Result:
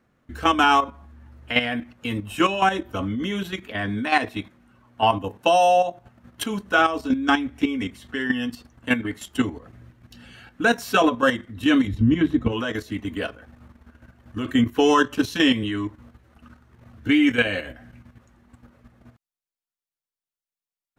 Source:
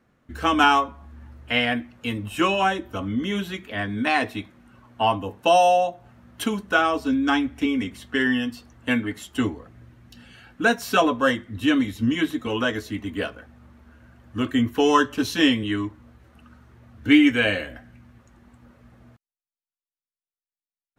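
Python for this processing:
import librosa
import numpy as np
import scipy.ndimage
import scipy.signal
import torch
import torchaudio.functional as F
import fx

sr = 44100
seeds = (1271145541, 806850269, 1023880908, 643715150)

y = fx.riaa(x, sr, side='playback', at=(11.87, 12.51), fade=0.02)
y = fx.level_steps(y, sr, step_db=10)
y = F.gain(torch.from_numpy(y), 4.0).numpy()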